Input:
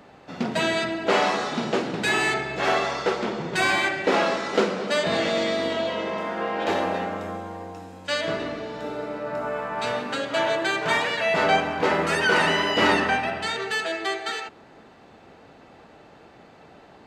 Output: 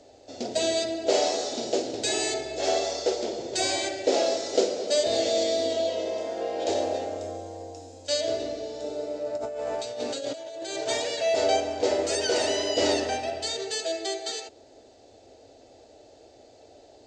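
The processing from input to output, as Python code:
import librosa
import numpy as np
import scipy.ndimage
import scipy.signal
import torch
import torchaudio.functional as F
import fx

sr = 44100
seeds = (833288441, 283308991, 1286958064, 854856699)

y = fx.curve_eq(x, sr, hz=(110.0, 170.0, 260.0, 640.0, 1100.0, 2700.0, 4700.0, 7300.0, 13000.0), db=(0, -22, -2, 5, -17, -6, 8, 12, -18))
y = fx.over_compress(y, sr, threshold_db=-31.0, ratio=-1.0, at=(9.36, 10.86), fade=0.02)
y = y * librosa.db_to_amplitude(-3.0)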